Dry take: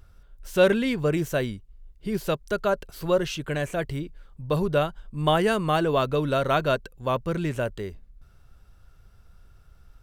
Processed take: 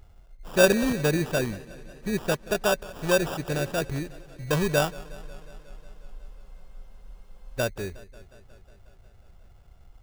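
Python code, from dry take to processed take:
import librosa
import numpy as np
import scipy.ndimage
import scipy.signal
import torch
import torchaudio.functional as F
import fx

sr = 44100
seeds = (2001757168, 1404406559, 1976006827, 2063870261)

y = fx.sample_hold(x, sr, seeds[0], rate_hz=2100.0, jitter_pct=0)
y = fx.spec_freeze(y, sr, seeds[1], at_s=5.07, hold_s=2.52)
y = fx.echo_warbled(y, sr, ms=181, feedback_pct=72, rate_hz=2.8, cents=60, wet_db=-20.5)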